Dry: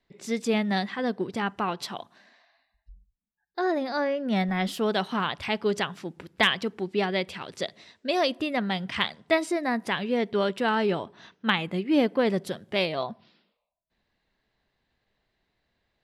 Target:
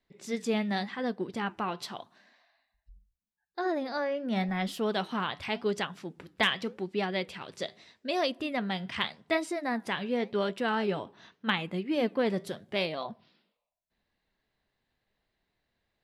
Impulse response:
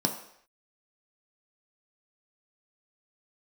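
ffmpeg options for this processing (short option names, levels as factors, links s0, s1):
-af "flanger=delay=3.6:depth=5.6:regen=-80:speed=0.85:shape=sinusoidal"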